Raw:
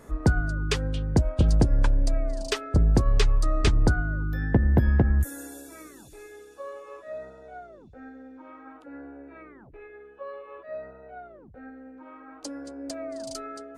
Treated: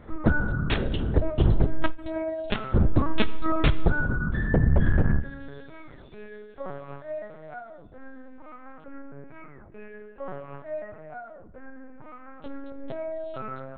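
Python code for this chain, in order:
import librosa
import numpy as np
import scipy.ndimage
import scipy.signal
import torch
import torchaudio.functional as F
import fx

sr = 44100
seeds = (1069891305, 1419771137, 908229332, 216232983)

y = fx.low_shelf(x, sr, hz=140.0, db=-3.0)
y = fx.over_compress(y, sr, threshold_db=-19.0, ratio=-1.0)
y = fx.lpc_vocoder(y, sr, seeds[0], excitation='pitch_kept', order=8)
y = fx.highpass(y, sr, hz=53.0, slope=12, at=(1.96, 2.44), fade=0.02)
y = fx.rev_plate(y, sr, seeds[1], rt60_s=0.9, hf_ratio=1.0, predelay_ms=0, drr_db=13.5)
y = fx.end_taper(y, sr, db_per_s=240.0)
y = y * librosa.db_to_amplitude(3.0)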